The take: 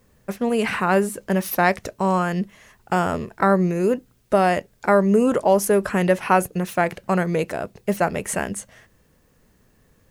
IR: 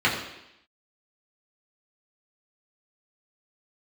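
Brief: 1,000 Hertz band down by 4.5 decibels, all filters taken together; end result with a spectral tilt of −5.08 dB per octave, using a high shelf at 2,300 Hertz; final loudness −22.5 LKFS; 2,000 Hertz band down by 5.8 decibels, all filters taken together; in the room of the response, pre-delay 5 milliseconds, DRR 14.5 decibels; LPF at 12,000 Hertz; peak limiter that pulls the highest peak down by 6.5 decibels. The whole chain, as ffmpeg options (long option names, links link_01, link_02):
-filter_complex "[0:a]lowpass=12000,equalizer=frequency=1000:width_type=o:gain=-5,equalizer=frequency=2000:width_type=o:gain=-4,highshelf=frequency=2300:gain=-3.5,alimiter=limit=-14dB:level=0:latency=1,asplit=2[link_01][link_02];[1:a]atrim=start_sample=2205,adelay=5[link_03];[link_02][link_03]afir=irnorm=-1:irlink=0,volume=-31.5dB[link_04];[link_01][link_04]amix=inputs=2:normalize=0,volume=3dB"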